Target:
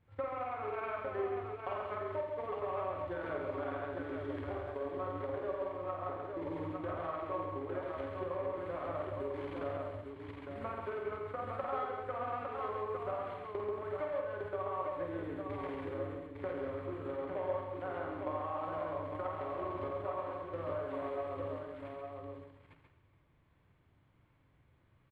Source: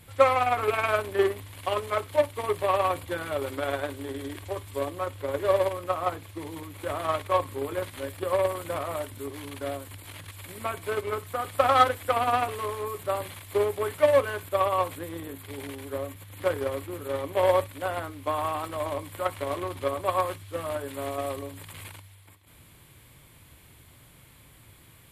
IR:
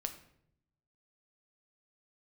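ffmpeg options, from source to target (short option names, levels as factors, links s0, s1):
-filter_complex "[0:a]lowpass=1700,agate=range=0.158:threshold=0.00794:ratio=16:detection=peak,acompressor=threshold=0.0126:ratio=5,aecho=1:1:48|86|856:0.562|0.398|0.596,asplit=2[s0][s1];[1:a]atrim=start_sample=2205,asetrate=43659,aresample=44100,adelay=135[s2];[s1][s2]afir=irnorm=-1:irlink=0,volume=0.631[s3];[s0][s3]amix=inputs=2:normalize=0,volume=0.841"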